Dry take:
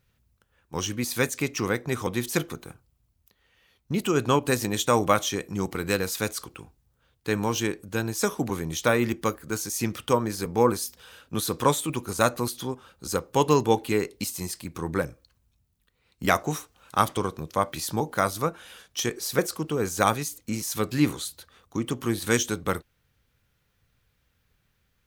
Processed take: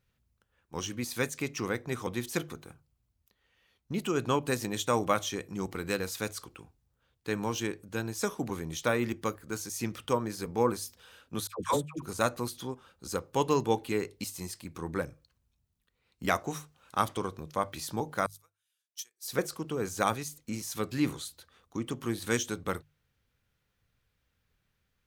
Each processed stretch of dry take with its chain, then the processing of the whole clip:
11.47–12.02 gate -29 dBFS, range -34 dB + dispersion lows, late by 0.105 s, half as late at 780 Hz
18.26–19.28 differentiator + upward expander 2.5:1, over -44 dBFS
whole clip: high shelf 11000 Hz -4.5 dB; notches 50/100/150 Hz; gain -6 dB

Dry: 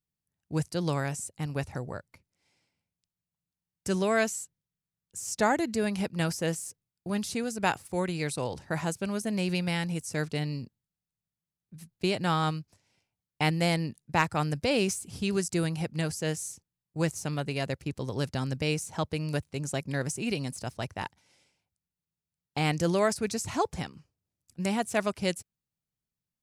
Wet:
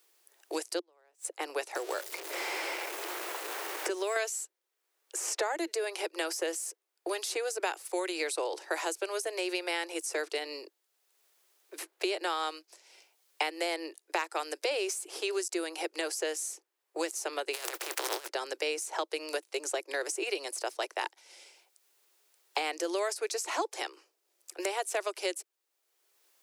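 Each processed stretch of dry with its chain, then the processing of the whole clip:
0.79–1.25 switching spikes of -30 dBFS + LPF 1400 Hz 6 dB/oct + flipped gate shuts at -29 dBFS, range -38 dB
1.75–4.16 zero-crossing step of -43.5 dBFS + three-band squash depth 70%
17.53–18.26 spectral contrast lowered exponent 0.29 + negative-ratio compressor -38 dBFS, ratio -0.5
whole clip: compressor, threshold -29 dBFS; steep high-pass 330 Hz 96 dB/oct; three-band squash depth 70%; gain +3.5 dB

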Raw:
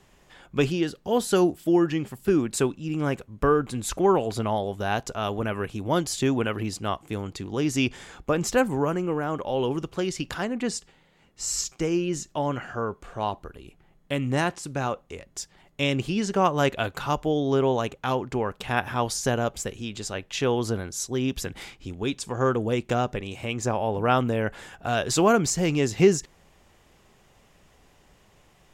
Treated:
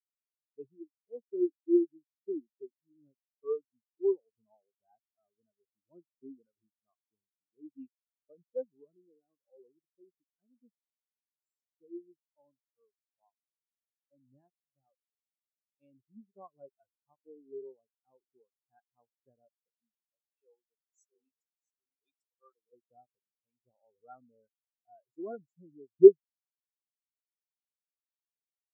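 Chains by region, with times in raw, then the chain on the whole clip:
20.39–22.73 tilt +4 dB/oct + upward compressor, threshold -28 dBFS + echo 0.665 s -5.5 dB
whole clip: HPF 120 Hz 6 dB/oct; spectral expander 4:1; gain +2 dB

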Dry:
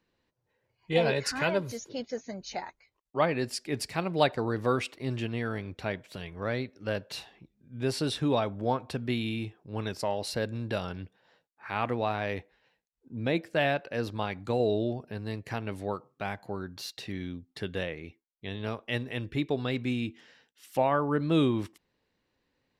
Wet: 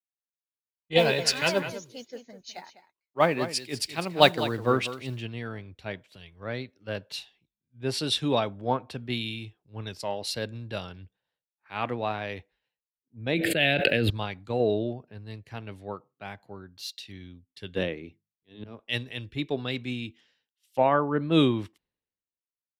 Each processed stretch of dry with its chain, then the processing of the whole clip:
0.98–5.21 modulation noise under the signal 29 dB + echo 0.204 s -8.5 dB
13.34–14.1 fixed phaser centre 2500 Hz, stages 4 + fast leveller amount 100%
17.76–18.79 auto swell 0.188 s + bell 280 Hz +9.5 dB 1.8 oct + notches 50/100/150/200 Hz
whole clip: bell 3300 Hz +5.5 dB 1 oct; three-band expander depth 100%; gain -1 dB

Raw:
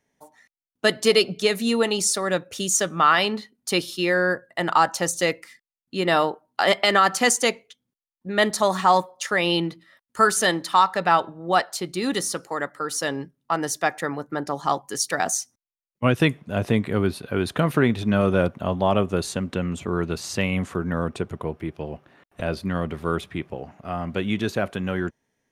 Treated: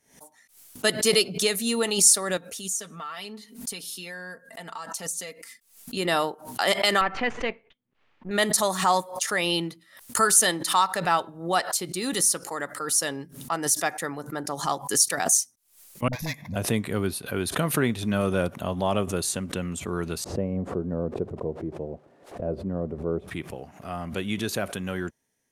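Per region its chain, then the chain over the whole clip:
2.37–5.97 comb 4.4 ms, depth 69% + compressor 2.5:1, threshold -38 dBFS
7.01–8.31 half-wave gain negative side -7 dB + LPF 2600 Hz 24 dB/oct
16.08–16.56 overloaded stage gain 18.5 dB + fixed phaser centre 2000 Hz, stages 8 + dispersion highs, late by 48 ms, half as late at 380 Hz
20.24–23.28 switching spikes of -25 dBFS + synth low-pass 530 Hz, resonance Q 1.6
whole clip: bell 11000 Hz +14.5 dB 1.6 oct; backwards sustainer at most 120 dB/s; gain -5 dB

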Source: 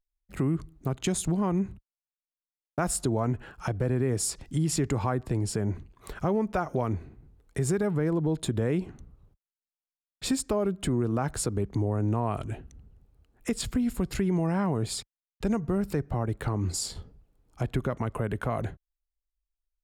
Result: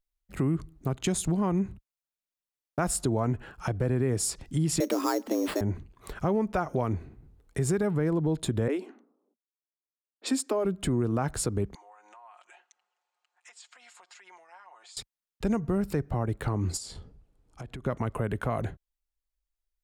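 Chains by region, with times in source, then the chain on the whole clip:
4.8–5.61 frequency shift +180 Hz + sample-rate reducer 6100 Hz
8.68–10.65 steep high-pass 230 Hz 72 dB/oct + low-pass opened by the level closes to 490 Hz, open at -29 dBFS
11.75–14.97 elliptic band-pass 820–7500 Hz, stop band 70 dB + compressor 4:1, threshold -53 dBFS + comb 5.6 ms, depth 71%
16.77–17.86 LPF 11000 Hz 24 dB/oct + compressor 4:1, threshold -38 dBFS
whole clip: dry

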